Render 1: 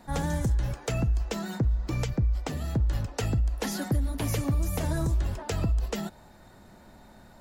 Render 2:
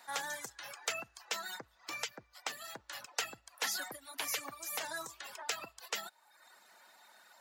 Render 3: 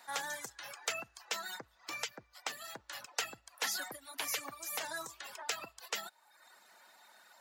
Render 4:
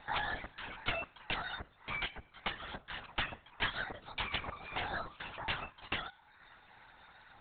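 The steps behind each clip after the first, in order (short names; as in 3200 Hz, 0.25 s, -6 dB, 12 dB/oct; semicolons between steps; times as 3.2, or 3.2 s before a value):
reverb removal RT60 0.82 s; dynamic EQ 9500 Hz, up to -4 dB, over -55 dBFS, Q 1.7; HPF 1200 Hz 12 dB/oct; gain +2.5 dB
nothing audible
vibrato 2.4 Hz 26 cents; resonator 210 Hz, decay 0.51 s, harmonics all, mix 50%; LPC vocoder at 8 kHz whisper; gain +9 dB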